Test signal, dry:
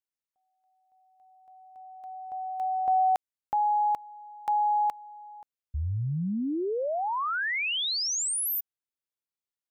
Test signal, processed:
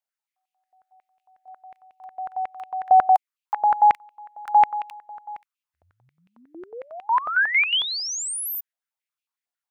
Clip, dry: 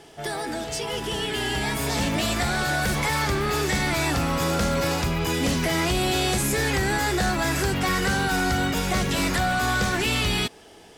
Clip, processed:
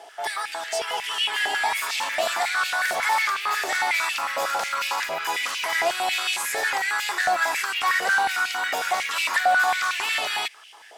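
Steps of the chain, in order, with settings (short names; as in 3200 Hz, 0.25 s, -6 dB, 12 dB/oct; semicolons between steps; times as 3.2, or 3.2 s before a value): limiter -18.5 dBFS; stepped high-pass 11 Hz 680–2600 Hz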